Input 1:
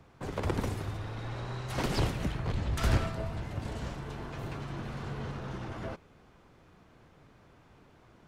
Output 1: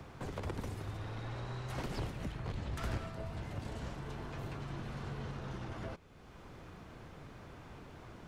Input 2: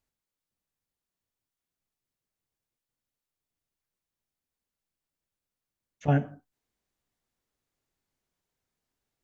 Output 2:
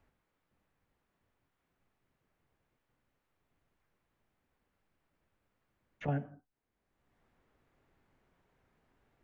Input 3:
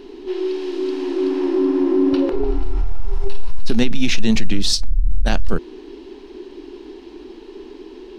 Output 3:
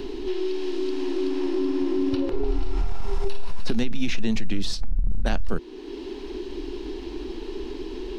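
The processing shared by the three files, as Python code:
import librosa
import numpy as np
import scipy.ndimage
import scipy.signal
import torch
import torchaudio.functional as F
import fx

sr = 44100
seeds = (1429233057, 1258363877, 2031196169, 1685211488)

y = fx.band_squash(x, sr, depth_pct=70)
y = F.gain(torch.from_numpy(y), -6.5).numpy()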